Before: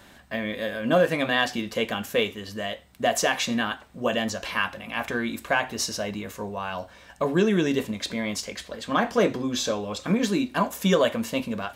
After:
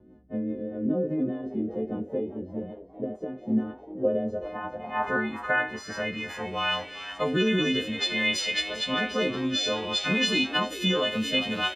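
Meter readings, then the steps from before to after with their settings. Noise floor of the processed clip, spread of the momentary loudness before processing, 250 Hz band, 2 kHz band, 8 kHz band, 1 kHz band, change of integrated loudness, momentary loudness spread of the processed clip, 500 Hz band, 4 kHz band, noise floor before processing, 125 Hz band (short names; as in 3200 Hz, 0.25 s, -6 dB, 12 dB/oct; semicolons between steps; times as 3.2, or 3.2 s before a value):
-47 dBFS, 11 LU, -1.5 dB, -0.5 dB, -6.5 dB, -4.0 dB, -1.5 dB, 12 LU, -4.0 dB, +3.5 dB, -51 dBFS, -3.5 dB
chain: frequency quantiser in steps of 3 st; limiter -14.5 dBFS, peak gain reduction 10.5 dB; low-pass sweep 340 Hz -> 3000 Hz, 3.57–6.47; frequency-shifting echo 0.398 s, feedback 52%, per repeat +94 Hz, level -14 dB; rotary speaker horn 5 Hz, later 0.6 Hz, at 2.83; high shelf 7800 Hz +10 dB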